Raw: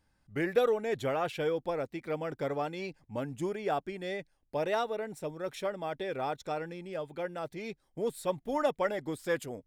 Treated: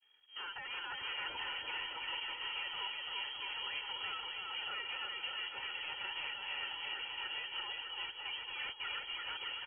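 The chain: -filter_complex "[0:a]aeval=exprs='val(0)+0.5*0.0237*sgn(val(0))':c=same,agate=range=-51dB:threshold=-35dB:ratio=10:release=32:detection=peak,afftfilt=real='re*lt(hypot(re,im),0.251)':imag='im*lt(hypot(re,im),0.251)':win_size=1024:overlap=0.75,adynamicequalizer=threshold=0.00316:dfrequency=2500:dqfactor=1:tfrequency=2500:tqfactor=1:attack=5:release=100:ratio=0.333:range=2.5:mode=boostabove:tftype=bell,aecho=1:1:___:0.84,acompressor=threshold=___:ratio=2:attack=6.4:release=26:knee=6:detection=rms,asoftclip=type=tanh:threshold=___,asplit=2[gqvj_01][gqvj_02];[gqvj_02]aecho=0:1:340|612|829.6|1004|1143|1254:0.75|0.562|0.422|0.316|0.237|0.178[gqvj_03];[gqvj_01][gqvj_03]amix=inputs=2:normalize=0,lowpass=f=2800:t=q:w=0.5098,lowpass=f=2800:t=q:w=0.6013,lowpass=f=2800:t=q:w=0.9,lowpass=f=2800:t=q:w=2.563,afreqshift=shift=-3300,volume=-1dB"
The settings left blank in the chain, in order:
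2.1, -47dB, -36.5dB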